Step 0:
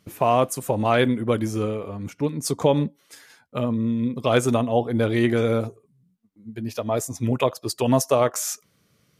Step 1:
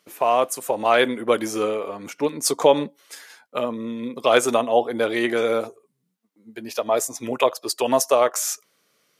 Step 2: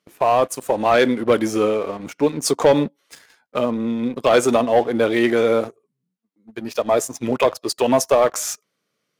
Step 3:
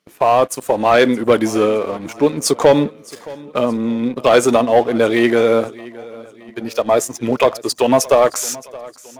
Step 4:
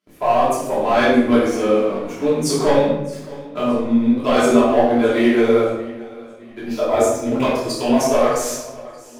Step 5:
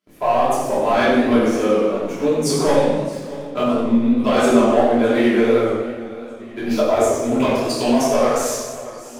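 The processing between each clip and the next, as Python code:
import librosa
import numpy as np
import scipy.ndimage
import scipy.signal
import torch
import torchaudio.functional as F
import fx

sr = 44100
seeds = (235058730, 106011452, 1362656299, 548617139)

y1 = scipy.signal.sosfilt(scipy.signal.butter(2, 430.0, 'highpass', fs=sr, output='sos'), x)
y1 = fx.rider(y1, sr, range_db=10, speed_s=2.0)
y1 = y1 * librosa.db_to_amplitude(4.0)
y2 = fx.high_shelf(y1, sr, hz=9400.0, db=-8.5)
y2 = fx.leveller(y2, sr, passes=2)
y2 = fx.peak_eq(y2, sr, hz=140.0, db=6.5, octaves=2.6)
y2 = y2 * librosa.db_to_amplitude(-5.0)
y3 = fx.echo_feedback(y2, sr, ms=620, feedback_pct=44, wet_db=-20.5)
y3 = y3 * librosa.db_to_amplitude(3.5)
y4 = fx.chorus_voices(y3, sr, voices=6, hz=1.2, base_ms=23, depth_ms=3.0, mix_pct=40)
y4 = fx.room_shoebox(y4, sr, seeds[0], volume_m3=320.0, walls='mixed', distance_m=3.0)
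y4 = y4 * librosa.db_to_amplitude(-8.5)
y5 = fx.recorder_agc(y4, sr, target_db=-7.5, rise_db_per_s=5.9, max_gain_db=30)
y5 = fx.echo_feedback(y5, sr, ms=167, feedback_pct=58, wet_db=-22.5)
y5 = fx.echo_warbled(y5, sr, ms=91, feedback_pct=53, rate_hz=2.8, cents=154, wet_db=-8)
y5 = y5 * librosa.db_to_amplitude(-1.5)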